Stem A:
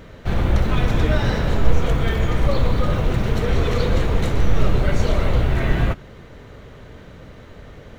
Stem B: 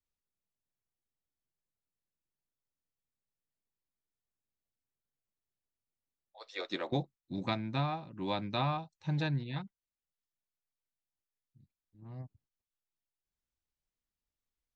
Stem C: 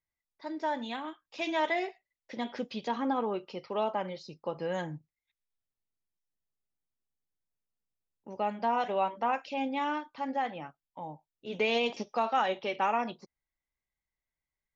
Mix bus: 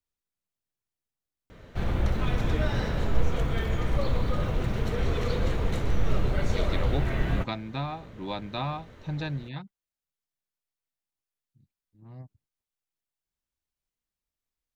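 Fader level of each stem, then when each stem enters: −8.0 dB, +0.5 dB, muted; 1.50 s, 0.00 s, muted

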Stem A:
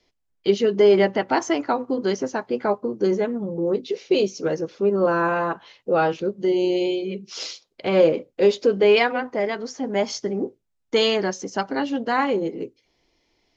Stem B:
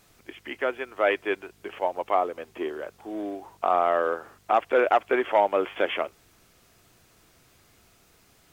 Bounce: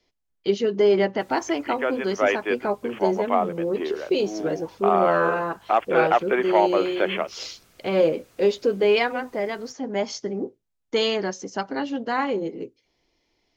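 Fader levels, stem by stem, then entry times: −3.0, +1.5 decibels; 0.00, 1.20 seconds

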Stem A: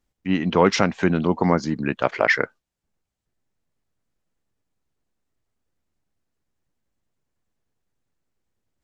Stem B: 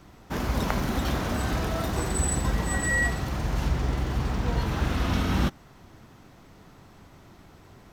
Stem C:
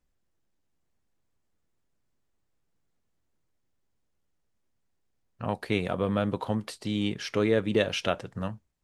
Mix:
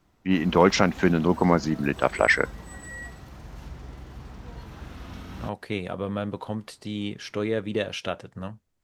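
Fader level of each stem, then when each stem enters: −1.0, −14.5, −2.5 decibels; 0.00, 0.00, 0.00 seconds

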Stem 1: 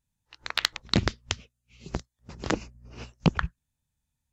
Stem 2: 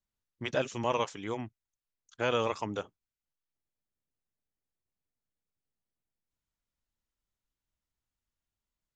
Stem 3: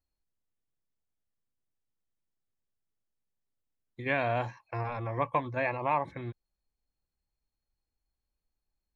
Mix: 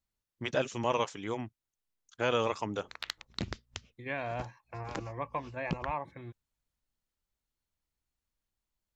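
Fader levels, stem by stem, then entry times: −13.0, 0.0, −7.0 decibels; 2.45, 0.00, 0.00 seconds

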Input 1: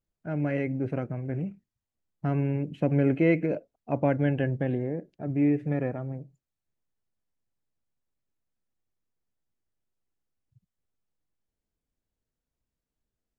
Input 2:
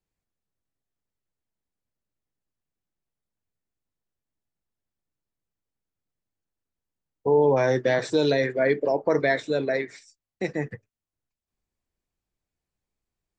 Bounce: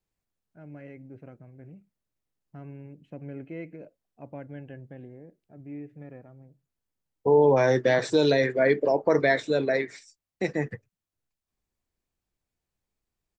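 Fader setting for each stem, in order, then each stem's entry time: −16.0, +0.5 decibels; 0.30, 0.00 seconds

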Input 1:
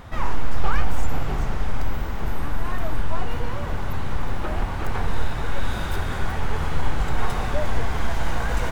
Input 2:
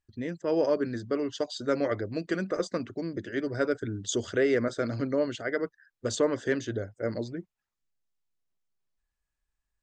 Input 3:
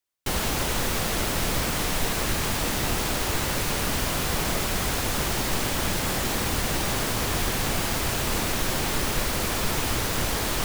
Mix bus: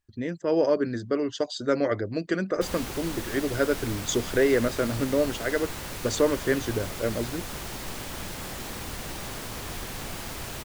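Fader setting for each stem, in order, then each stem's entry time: muted, +3.0 dB, −10.0 dB; muted, 0.00 s, 2.35 s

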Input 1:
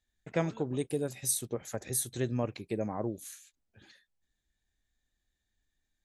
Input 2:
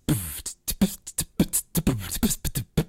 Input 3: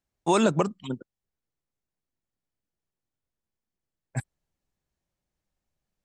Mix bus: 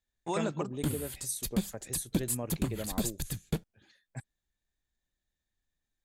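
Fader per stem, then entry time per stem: −5.5, −8.5, −11.5 decibels; 0.00, 0.75, 0.00 seconds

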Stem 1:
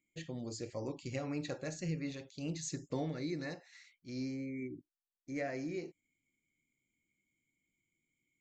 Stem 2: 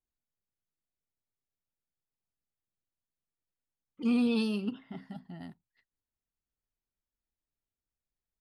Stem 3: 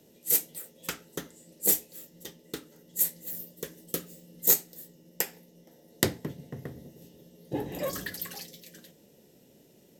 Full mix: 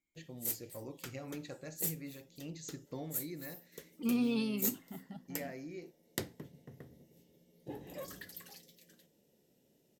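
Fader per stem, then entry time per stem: −6.0, −4.5, −12.5 decibels; 0.00, 0.00, 0.15 seconds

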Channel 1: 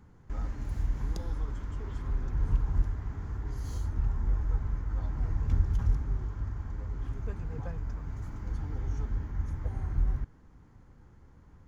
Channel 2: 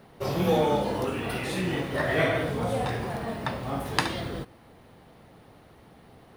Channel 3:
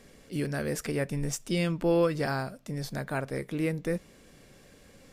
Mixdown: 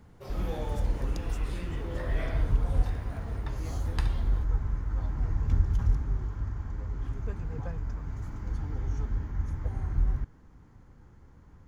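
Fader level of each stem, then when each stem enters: +1.5, −15.0, −19.0 decibels; 0.00, 0.00, 0.00 seconds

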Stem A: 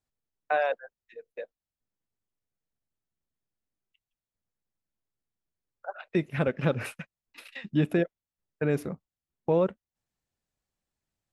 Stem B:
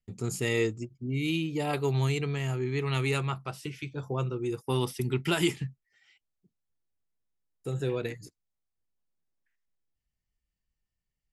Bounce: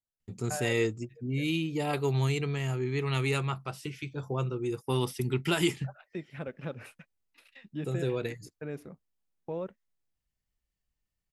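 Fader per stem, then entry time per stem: −12.0, −0.5 decibels; 0.00, 0.20 seconds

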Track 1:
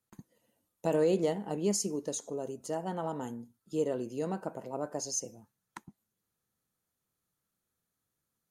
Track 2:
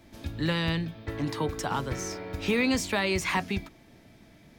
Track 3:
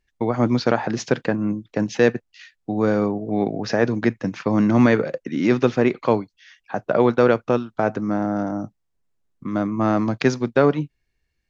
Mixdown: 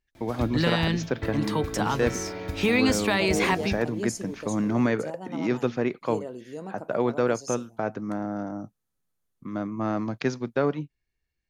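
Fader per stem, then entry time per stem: −3.5, +3.0, −8.0 decibels; 2.35, 0.15, 0.00 seconds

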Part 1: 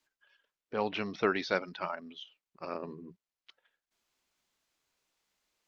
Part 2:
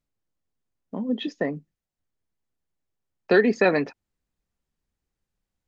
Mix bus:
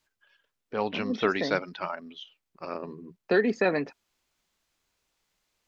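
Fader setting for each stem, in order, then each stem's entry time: +3.0, −5.0 decibels; 0.00, 0.00 seconds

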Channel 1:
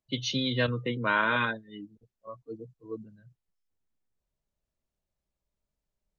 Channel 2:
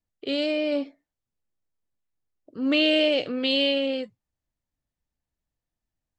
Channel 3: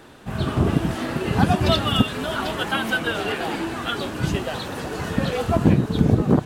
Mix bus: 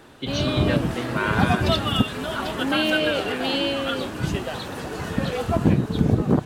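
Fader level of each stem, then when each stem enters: 0.0, −2.5, −2.0 decibels; 0.10, 0.00, 0.00 seconds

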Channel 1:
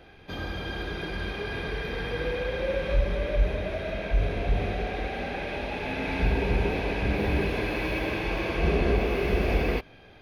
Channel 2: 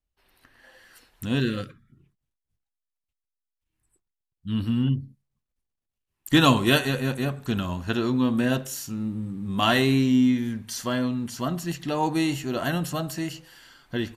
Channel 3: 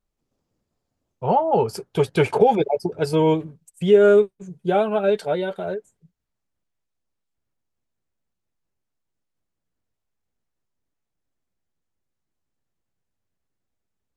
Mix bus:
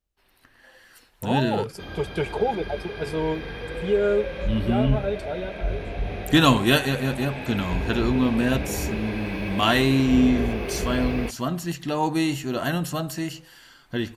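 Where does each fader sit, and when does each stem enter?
−3.0, +1.0, −8.0 decibels; 1.50, 0.00, 0.00 seconds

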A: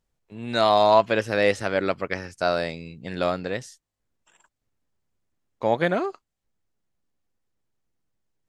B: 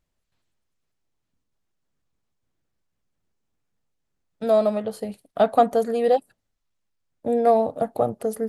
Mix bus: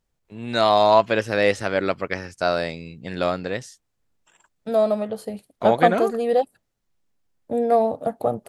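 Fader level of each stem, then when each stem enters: +1.5, −0.5 decibels; 0.00, 0.25 seconds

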